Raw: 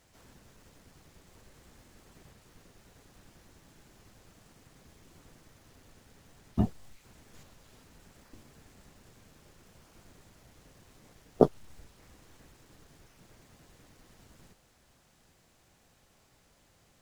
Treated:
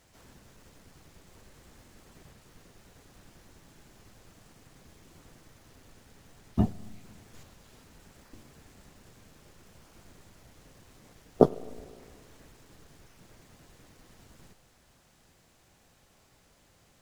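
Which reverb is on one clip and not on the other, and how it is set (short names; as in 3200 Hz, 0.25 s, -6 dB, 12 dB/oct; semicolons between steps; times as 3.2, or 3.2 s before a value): spring tank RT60 2.1 s, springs 37/50 ms, chirp 25 ms, DRR 18 dB; gain +2 dB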